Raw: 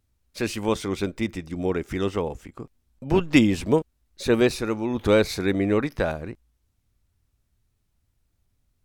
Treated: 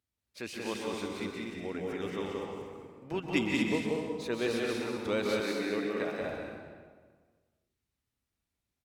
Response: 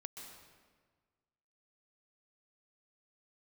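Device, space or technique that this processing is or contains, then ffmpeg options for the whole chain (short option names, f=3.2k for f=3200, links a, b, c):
stadium PA: -filter_complex "[0:a]highpass=f=180:p=1,equalizer=f=2.8k:t=o:w=1.8:g=3.5,aecho=1:1:180.8|242:0.708|0.501[a];[1:a]atrim=start_sample=2205[b];[a][b]afir=irnorm=-1:irlink=0,asettb=1/sr,asplit=3[c][d][e];[c]atrim=end=5.404[f];[d]atrim=start=5.4:end=6.21,asetpts=PTS-STARTPTS,afade=t=in:d=0.004:c=qsin,afade=t=out:st=0.806:d=0.004:c=qsin,highpass=190[g];[e]atrim=start=6.206[h];[f][g]acrossfade=d=0.004:c1=hsin:c2=qsin[i];[i][h]acrossfade=d=0.004:c1=qsin:c2=hsin,volume=-7.5dB"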